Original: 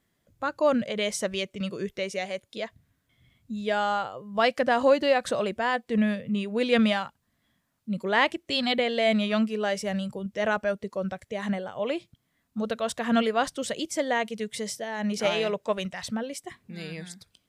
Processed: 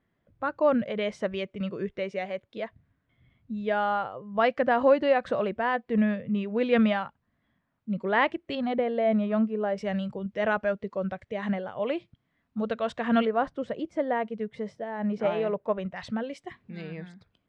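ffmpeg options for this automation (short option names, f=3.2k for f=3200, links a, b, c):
-af "asetnsamples=n=441:p=0,asendcmd='8.55 lowpass f 1100;9.78 lowpass f 2700;13.25 lowpass f 1300;15.96 lowpass f 2900;16.81 lowpass f 1800',lowpass=2.1k"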